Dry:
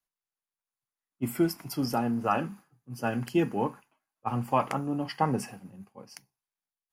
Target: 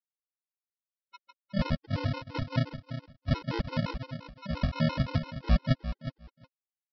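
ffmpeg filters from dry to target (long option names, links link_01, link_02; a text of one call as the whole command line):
ffmpeg -i in.wav -filter_complex "[0:a]areverse,bandreject=frequency=810:width=5,asplit=2[link_01][link_02];[link_02]asoftclip=type=tanh:threshold=-28dB,volume=-7dB[link_03];[link_01][link_03]amix=inputs=2:normalize=0,bass=frequency=250:gain=4,treble=frequency=4000:gain=8,afftfilt=real='re*gte(hypot(re,im),0.158)':imag='im*gte(hypot(re,im),0.158)':win_size=1024:overlap=0.75,aresample=11025,acrusher=samples=28:mix=1:aa=0.000001,aresample=44100,aecho=1:1:364|728:0.282|0.0451,afftfilt=real='re*gt(sin(2*PI*5.8*pts/sr)*(1-2*mod(floor(b*sr/1024/270),2)),0)':imag='im*gt(sin(2*PI*5.8*pts/sr)*(1-2*mod(floor(b*sr/1024/270),2)),0)':win_size=1024:overlap=0.75" out.wav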